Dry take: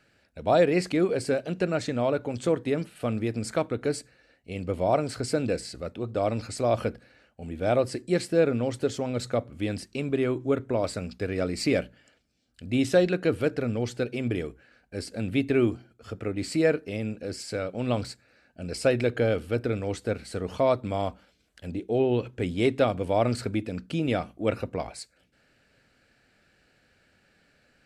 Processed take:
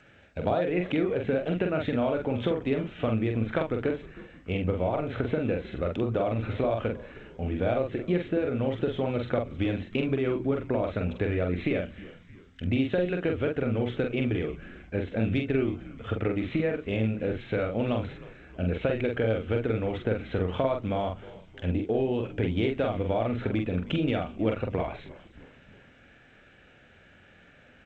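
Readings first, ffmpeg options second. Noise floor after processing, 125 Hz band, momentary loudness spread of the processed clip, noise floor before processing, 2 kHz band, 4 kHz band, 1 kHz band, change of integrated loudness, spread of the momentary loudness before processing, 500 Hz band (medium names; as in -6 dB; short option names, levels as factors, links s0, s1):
-56 dBFS, +1.5 dB, 7 LU, -66 dBFS, -1.0 dB, -3.5 dB, -2.5 dB, -1.5 dB, 12 LU, -2.0 dB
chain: -filter_complex "[0:a]equalizer=f=94:t=o:w=0.29:g=4,acompressor=threshold=0.0282:ratio=16,aresample=8000,aresample=44100,asplit=2[s0][s1];[s1]adelay=45,volume=0.631[s2];[s0][s2]amix=inputs=2:normalize=0,asplit=2[s3][s4];[s4]asplit=4[s5][s6][s7][s8];[s5]adelay=313,afreqshift=-90,volume=0.112[s9];[s6]adelay=626,afreqshift=-180,volume=0.0603[s10];[s7]adelay=939,afreqshift=-270,volume=0.0327[s11];[s8]adelay=1252,afreqshift=-360,volume=0.0176[s12];[s9][s10][s11][s12]amix=inputs=4:normalize=0[s13];[s3][s13]amix=inputs=2:normalize=0,acontrast=35,volume=1.19" -ar 16000 -c:a g722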